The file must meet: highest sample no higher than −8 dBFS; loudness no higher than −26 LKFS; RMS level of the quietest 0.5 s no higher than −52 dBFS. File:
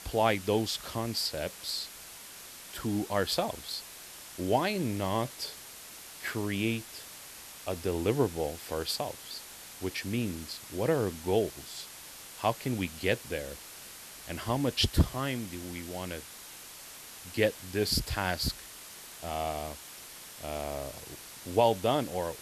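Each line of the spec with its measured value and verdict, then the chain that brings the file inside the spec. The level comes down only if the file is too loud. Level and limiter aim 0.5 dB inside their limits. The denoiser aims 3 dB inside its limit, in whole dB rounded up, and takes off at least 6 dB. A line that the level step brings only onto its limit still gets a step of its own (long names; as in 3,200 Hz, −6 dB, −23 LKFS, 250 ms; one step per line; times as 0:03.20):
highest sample −11.0 dBFS: in spec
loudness −32.0 LKFS: in spec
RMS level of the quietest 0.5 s −47 dBFS: out of spec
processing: broadband denoise 8 dB, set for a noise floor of −47 dBFS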